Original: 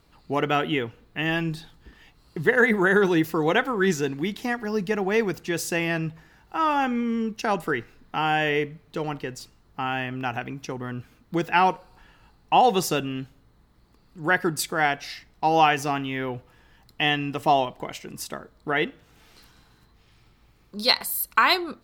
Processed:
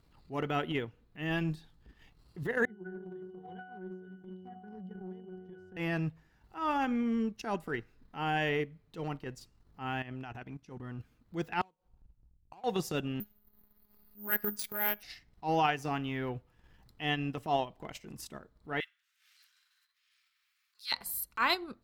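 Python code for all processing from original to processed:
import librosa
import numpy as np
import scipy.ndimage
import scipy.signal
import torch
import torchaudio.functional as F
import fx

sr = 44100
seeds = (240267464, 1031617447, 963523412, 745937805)

y = fx.chain(x, sr, fx.octave_resonator(note='F#', decay_s=0.78),
    fx.echo_single(ms=258, db=-15.0),
    fx.band_squash(depth_pct=100), at=(2.65, 5.77))
y = fx.chain(y, sr, fx.lowpass(hz=11000.0, slope=12),
    fx.level_steps(step_db=12), at=(10.02, 10.99))
y = fx.chain(y, sr, fx.median_filter(points=25),
    fx.gate_flip(shuts_db=-21.0, range_db=-28),
    fx.band_widen(depth_pct=100), at=(11.61, 12.64))
y = fx.chain(y, sr, fx.steep_lowpass(hz=8400.0, slope=36),
    fx.robotise(hz=208.0),
    fx.resample_bad(factor=3, down='filtered', up='zero_stuff'), at=(13.2, 15.03))
y = fx.chain(y, sr, fx.cheby2_highpass(hz=580.0, order=4, stop_db=50),
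    fx.mod_noise(seeds[0], snr_db=34), at=(18.8, 20.92))
y = fx.low_shelf(y, sr, hz=210.0, db=7.0)
y = fx.transient(y, sr, attack_db=-12, sustain_db=-8)
y = y * librosa.db_to_amplitude(-7.5)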